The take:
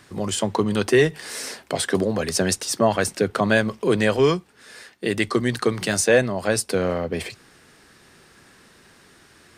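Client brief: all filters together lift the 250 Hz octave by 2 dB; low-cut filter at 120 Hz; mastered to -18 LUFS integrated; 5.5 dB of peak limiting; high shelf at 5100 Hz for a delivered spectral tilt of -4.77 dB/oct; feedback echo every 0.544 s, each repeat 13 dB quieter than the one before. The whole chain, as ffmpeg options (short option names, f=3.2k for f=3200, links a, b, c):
-af "highpass=120,equalizer=f=250:t=o:g=3,highshelf=f=5.1k:g=-7,alimiter=limit=-11dB:level=0:latency=1,aecho=1:1:544|1088|1632:0.224|0.0493|0.0108,volume=6dB"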